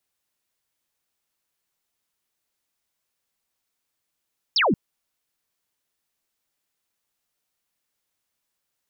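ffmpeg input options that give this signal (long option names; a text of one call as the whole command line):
ffmpeg -f lavfi -i "aevalsrc='0.15*clip(t/0.002,0,1)*clip((0.18-t)/0.002,0,1)*sin(2*PI*5700*0.18/log(160/5700)*(exp(log(160/5700)*t/0.18)-1))':duration=0.18:sample_rate=44100" out.wav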